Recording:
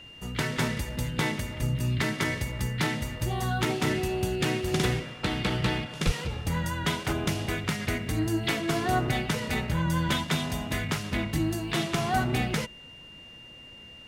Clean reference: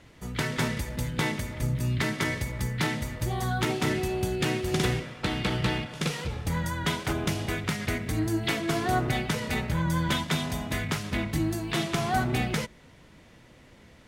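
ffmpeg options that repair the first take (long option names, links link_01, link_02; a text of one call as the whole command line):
ffmpeg -i in.wav -filter_complex "[0:a]bandreject=frequency=2800:width=30,asplit=3[link_01][link_02][link_03];[link_01]afade=type=out:start_time=6.05:duration=0.02[link_04];[link_02]highpass=frequency=140:width=0.5412,highpass=frequency=140:width=1.3066,afade=type=in:start_time=6.05:duration=0.02,afade=type=out:start_time=6.17:duration=0.02[link_05];[link_03]afade=type=in:start_time=6.17:duration=0.02[link_06];[link_04][link_05][link_06]amix=inputs=3:normalize=0" out.wav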